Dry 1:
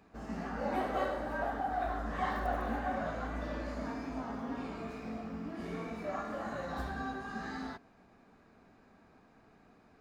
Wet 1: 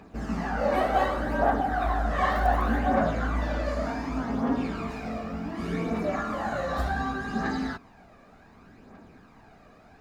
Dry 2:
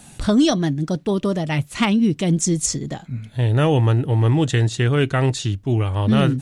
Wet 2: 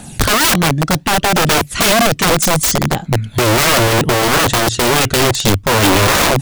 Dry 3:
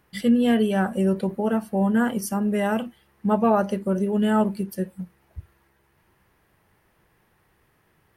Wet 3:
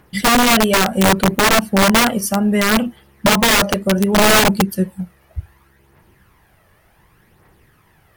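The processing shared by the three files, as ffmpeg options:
-af "aphaser=in_gain=1:out_gain=1:delay=1.8:decay=0.45:speed=0.67:type=triangular,aeval=exprs='(mod(6.31*val(0)+1,2)-1)/6.31':c=same,volume=8.5dB"

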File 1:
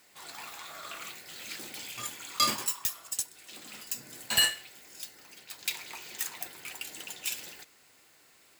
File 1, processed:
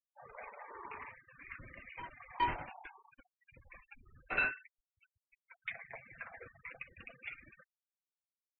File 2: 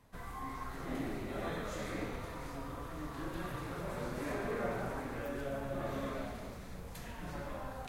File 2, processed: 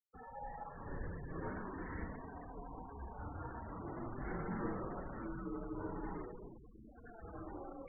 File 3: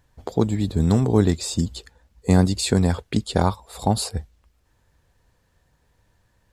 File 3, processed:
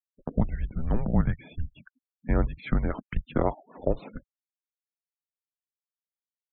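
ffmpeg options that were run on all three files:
-af "highpass=f=200:t=q:w=0.5412,highpass=f=200:t=q:w=1.307,lowpass=f=2.7k:t=q:w=0.5176,lowpass=f=2.7k:t=q:w=0.7071,lowpass=f=2.7k:t=q:w=1.932,afreqshift=-240,afftfilt=real='re*gte(hypot(re,im),0.00794)':imag='im*gte(hypot(re,im),0.00794)':win_size=1024:overlap=0.75,volume=-2.5dB"

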